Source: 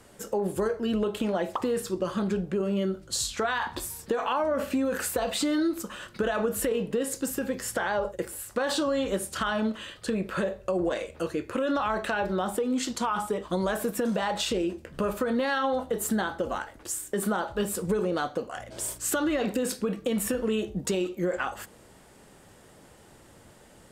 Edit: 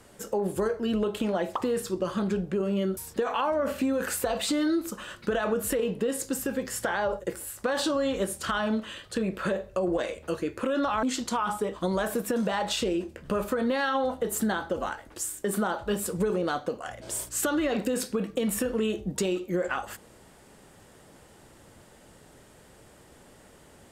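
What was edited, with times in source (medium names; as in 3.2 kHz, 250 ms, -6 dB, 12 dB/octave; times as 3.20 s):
2.97–3.89 s: delete
11.95–12.72 s: delete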